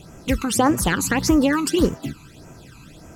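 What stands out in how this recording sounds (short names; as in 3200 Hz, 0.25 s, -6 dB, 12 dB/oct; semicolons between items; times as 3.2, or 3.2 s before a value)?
phasing stages 12, 1.7 Hz, lowest notch 550–4000 Hz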